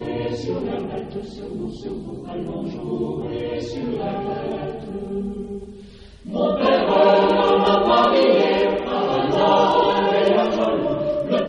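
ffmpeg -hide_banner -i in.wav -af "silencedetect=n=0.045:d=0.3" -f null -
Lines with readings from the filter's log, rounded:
silence_start: 5.64
silence_end: 6.28 | silence_duration: 0.65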